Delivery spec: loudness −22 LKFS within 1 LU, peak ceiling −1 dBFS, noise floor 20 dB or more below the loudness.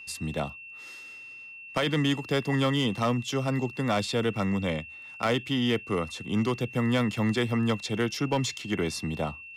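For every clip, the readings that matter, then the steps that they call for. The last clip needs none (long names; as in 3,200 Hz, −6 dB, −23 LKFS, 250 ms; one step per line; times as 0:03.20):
share of clipped samples 0.4%; peaks flattened at −18.5 dBFS; interfering tone 2,700 Hz; level of the tone −42 dBFS; integrated loudness −28.0 LKFS; sample peak −18.5 dBFS; target loudness −22.0 LKFS
→ clipped peaks rebuilt −18.5 dBFS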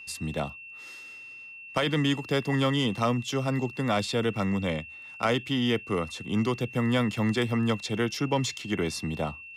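share of clipped samples 0.0%; interfering tone 2,700 Hz; level of the tone −42 dBFS
→ notch filter 2,700 Hz, Q 30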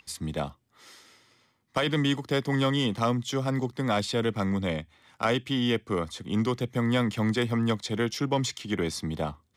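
interfering tone none found; integrated loudness −28.0 LKFS; sample peak −12.5 dBFS; target loudness −22.0 LKFS
→ level +6 dB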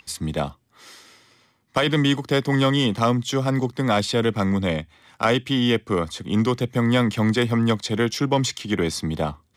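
integrated loudness −22.0 LKFS; sample peak −6.5 dBFS; background noise floor −64 dBFS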